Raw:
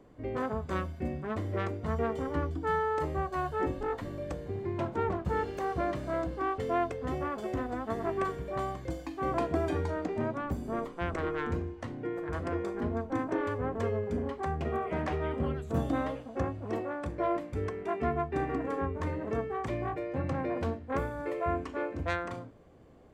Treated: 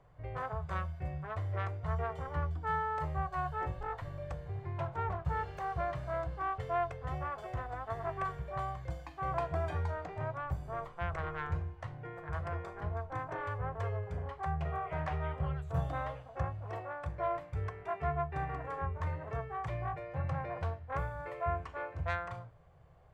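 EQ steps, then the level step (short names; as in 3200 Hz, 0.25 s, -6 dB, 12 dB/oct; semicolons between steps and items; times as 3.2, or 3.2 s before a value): EQ curve 160 Hz 0 dB, 220 Hz -26 dB, 700 Hz -2 dB, 1400 Hz -2 dB, 7200 Hz -10 dB; 0.0 dB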